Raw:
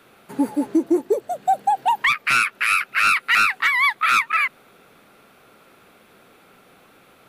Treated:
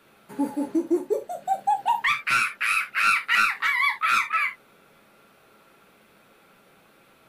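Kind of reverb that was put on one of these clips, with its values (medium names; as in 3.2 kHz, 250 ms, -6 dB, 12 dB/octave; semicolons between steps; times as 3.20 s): gated-style reverb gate 100 ms falling, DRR 3 dB; trim -6 dB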